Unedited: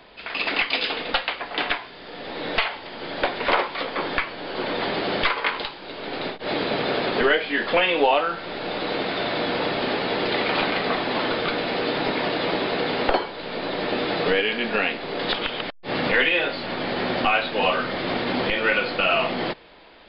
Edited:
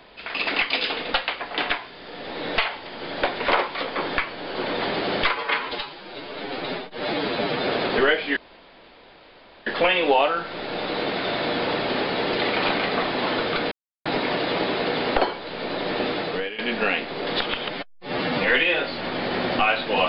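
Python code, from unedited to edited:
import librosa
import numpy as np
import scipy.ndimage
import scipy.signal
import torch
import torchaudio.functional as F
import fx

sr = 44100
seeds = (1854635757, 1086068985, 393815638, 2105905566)

y = fx.edit(x, sr, fx.stretch_span(start_s=5.35, length_s=1.55, factor=1.5),
    fx.insert_room_tone(at_s=7.59, length_s=1.3),
    fx.silence(start_s=11.64, length_s=0.34),
    fx.fade_out_to(start_s=13.97, length_s=0.54, floor_db=-14.5),
    fx.stretch_span(start_s=15.61, length_s=0.54, factor=1.5), tone=tone)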